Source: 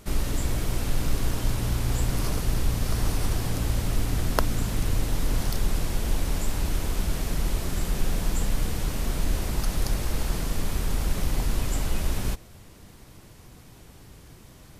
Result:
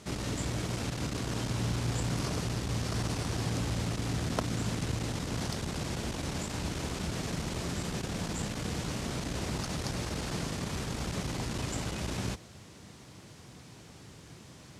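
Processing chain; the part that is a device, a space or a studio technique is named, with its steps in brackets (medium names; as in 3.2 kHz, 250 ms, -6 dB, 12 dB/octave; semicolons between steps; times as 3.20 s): open-reel tape (saturation -17.5 dBFS, distortion -17 dB; peaking EQ 65 Hz +4 dB 0.95 oct; white noise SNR 33 dB); Chebyshev band-pass 130–6800 Hz, order 2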